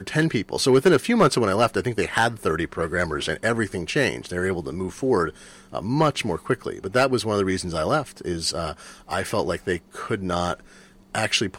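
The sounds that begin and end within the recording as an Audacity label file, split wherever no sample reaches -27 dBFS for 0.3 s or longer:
5.740000	8.710000	sound
9.110000	10.540000	sound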